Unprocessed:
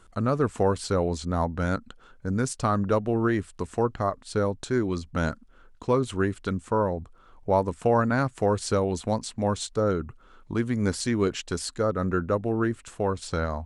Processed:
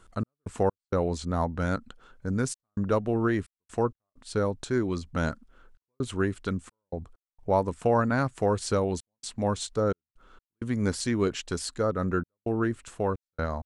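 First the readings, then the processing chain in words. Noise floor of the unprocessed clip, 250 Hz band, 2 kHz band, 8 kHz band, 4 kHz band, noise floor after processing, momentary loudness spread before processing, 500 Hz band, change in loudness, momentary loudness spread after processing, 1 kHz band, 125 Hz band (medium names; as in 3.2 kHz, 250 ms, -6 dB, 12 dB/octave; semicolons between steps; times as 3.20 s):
-54 dBFS, -2.5 dB, -2.0 dB, -2.0 dB, -2.0 dB, under -85 dBFS, 7 LU, -2.5 dB, -2.5 dB, 11 LU, -3.0 dB, -2.5 dB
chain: trance gate "x.x.xxxxxxx.xx" 65 bpm -60 dB; trim -1.5 dB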